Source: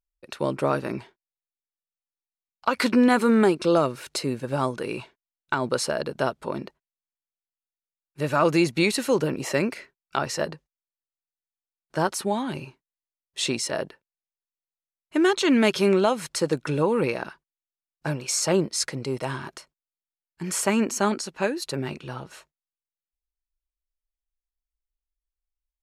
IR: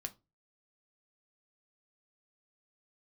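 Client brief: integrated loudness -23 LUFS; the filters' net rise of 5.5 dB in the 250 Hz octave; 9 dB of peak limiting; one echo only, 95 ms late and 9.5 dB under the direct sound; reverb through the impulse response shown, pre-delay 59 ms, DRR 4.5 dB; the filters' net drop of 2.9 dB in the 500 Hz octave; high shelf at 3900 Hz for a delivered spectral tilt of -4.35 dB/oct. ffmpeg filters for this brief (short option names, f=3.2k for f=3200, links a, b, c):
-filter_complex "[0:a]equalizer=f=250:t=o:g=8.5,equalizer=f=500:t=o:g=-7.5,highshelf=f=3.9k:g=5.5,alimiter=limit=-14dB:level=0:latency=1,aecho=1:1:95:0.335,asplit=2[a][b];[1:a]atrim=start_sample=2205,adelay=59[c];[b][c]afir=irnorm=-1:irlink=0,volume=-2dB[d];[a][d]amix=inputs=2:normalize=0,volume=0.5dB"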